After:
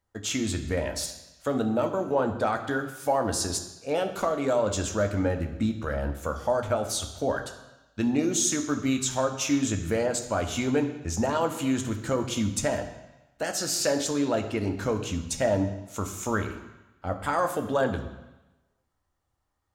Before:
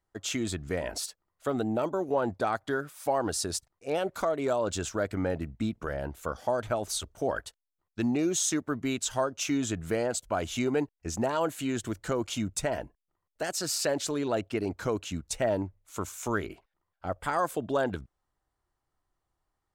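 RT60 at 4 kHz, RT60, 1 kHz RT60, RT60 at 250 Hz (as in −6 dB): 1.1 s, 1.0 s, 1.1 s, 1.0 s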